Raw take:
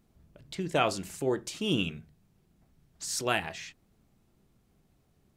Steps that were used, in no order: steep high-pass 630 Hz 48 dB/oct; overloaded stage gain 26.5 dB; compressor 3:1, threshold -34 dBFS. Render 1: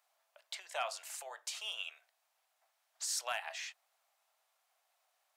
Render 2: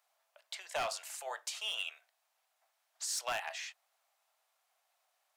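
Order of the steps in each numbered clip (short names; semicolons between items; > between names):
compressor > steep high-pass > overloaded stage; steep high-pass > overloaded stage > compressor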